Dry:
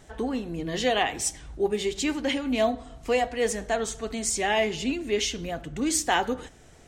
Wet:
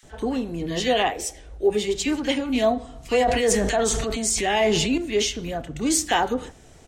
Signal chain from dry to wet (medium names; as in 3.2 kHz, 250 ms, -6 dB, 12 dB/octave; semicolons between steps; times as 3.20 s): 1.08–1.67 s: graphic EQ 125/250/500/1000/4000/8000 Hz -12/-7/+9/-8/-4/-6 dB; bands offset in time highs, lows 30 ms, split 1.7 kHz; 3.14–4.98 s: decay stretcher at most 24 dB/s; trim +3.5 dB